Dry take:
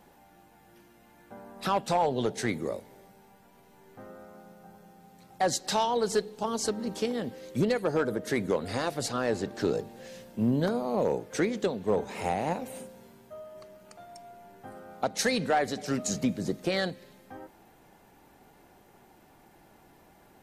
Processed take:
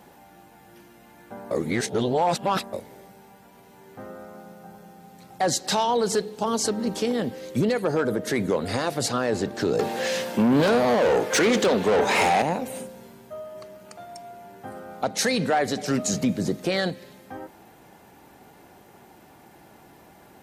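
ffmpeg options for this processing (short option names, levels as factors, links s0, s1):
-filter_complex "[0:a]asettb=1/sr,asplit=3[s0][s1][s2];[s0]atrim=end=9.794[s3];[s1]atrim=start=9.79:end=12.42,asetpts=PTS-STARTPTS,afade=t=in:d=0.004:c=qsin,afade=t=out:st=2.626:d=0.004:c=qsin,asplit=2[s4][s5];[s5]highpass=f=720:p=1,volume=14.1,asoftclip=type=tanh:threshold=0.133[s6];[s4][s6]amix=inputs=2:normalize=0,lowpass=f=5000:p=1,volume=0.501[s7];[s2]atrim=start=12.416[s8];[s3][s7]acrossfade=d=0.004:c1=hsin:c2=qsin[s9];[s9][s8]acrossfade=d=0.004:c1=qsin:c2=hsin,asplit=3[s10][s11][s12];[s10]atrim=end=1.512[s13];[s11]atrim=start=1.508:end=2.732,asetpts=PTS-STARTPTS,areverse[s14];[s12]atrim=start=2.728[s15];[s13][s14]acrossfade=d=0.004:c1=hsin:c2=hsin[s16];[s16][s15]acrossfade=d=0.004:c1=hsin:c2=hsin,highpass=63,alimiter=limit=0.0841:level=0:latency=1:release=20,volume=2.24"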